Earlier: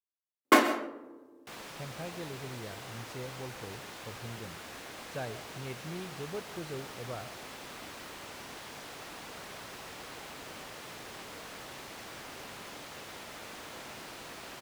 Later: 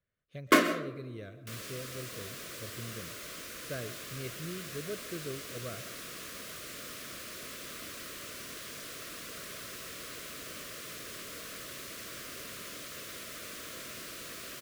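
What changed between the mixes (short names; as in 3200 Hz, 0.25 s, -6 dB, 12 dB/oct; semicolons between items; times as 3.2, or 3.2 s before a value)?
speech: entry -1.45 s; second sound: add high shelf 7000 Hz +10.5 dB; master: add Butterworth band-stop 840 Hz, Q 2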